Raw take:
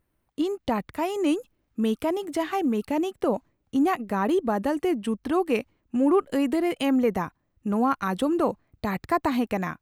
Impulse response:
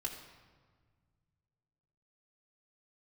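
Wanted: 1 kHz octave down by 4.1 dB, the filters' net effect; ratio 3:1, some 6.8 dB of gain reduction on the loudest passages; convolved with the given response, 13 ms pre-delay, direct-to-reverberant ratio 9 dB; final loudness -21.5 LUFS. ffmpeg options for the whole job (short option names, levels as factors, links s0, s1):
-filter_complex "[0:a]equalizer=f=1000:t=o:g=-5.5,acompressor=threshold=0.0398:ratio=3,asplit=2[s0][s1];[1:a]atrim=start_sample=2205,adelay=13[s2];[s1][s2]afir=irnorm=-1:irlink=0,volume=0.355[s3];[s0][s3]amix=inputs=2:normalize=0,volume=3.16"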